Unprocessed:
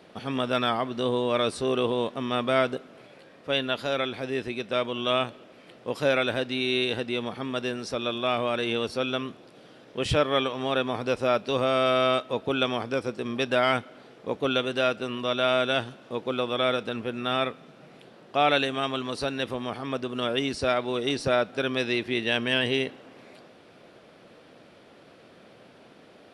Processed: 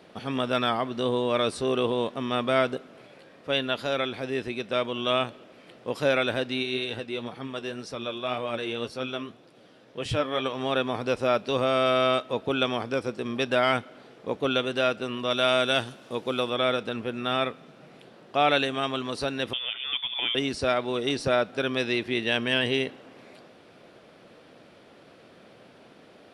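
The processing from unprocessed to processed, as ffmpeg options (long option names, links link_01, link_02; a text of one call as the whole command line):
ffmpeg -i in.wav -filter_complex "[0:a]asplit=3[link_01][link_02][link_03];[link_01]afade=type=out:start_time=6.62:duration=0.02[link_04];[link_02]flanger=delay=5.8:depth=5.8:regen=52:speed=1.9:shape=triangular,afade=type=in:start_time=6.62:duration=0.02,afade=type=out:start_time=10.44:duration=0.02[link_05];[link_03]afade=type=in:start_time=10.44:duration=0.02[link_06];[link_04][link_05][link_06]amix=inputs=3:normalize=0,asettb=1/sr,asplit=3[link_07][link_08][link_09];[link_07]atrim=end=15.304[link_10];[link_08]atrim=start=15.3:end=16.5,asetpts=PTS-STARTPTS,afade=type=in:duration=0.004:curve=qsin,afade=type=out:start_time=1.196:duration=0.004:curve=qsin,highshelf=frequency=5400:gain=11.5[link_11];[link_09]atrim=start=16.496[link_12];[link_10][link_11]acrossfade=duration=0.004:curve1=hsin:curve2=qsin[link_13];[link_13][link_12]acrossfade=duration=0.004:curve1=qsin:curve2=hsin,asettb=1/sr,asplit=3[link_14][link_15][link_16];[link_14]atrim=end=19.534[link_17];[link_15]atrim=start=19.53:end=20.35,asetpts=PTS-STARTPTS,afade=type=in:duration=0.004:curve=qsin,afade=type=out:start_time=0.816:duration=0.004:curve=qsin,lowpass=frequency=3100:width_type=q:width=0.5098,lowpass=frequency=3100:width_type=q:width=0.6013,lowpass=frequency=3100:width_type=q:width=0.9,lowpass=frequency=3100:width_type=q:width=2.563,afreqshift=-3700[link_18];[link_16]atrim=start=20.346[link_19];[link_17][link_18]acrossfade=duration=0.004:curve1=hsin:curve2=qsin[link_20];[link_20][link_19]acrossfade=duration=0.004:curve1=qsin:curve2=hsin" out.wav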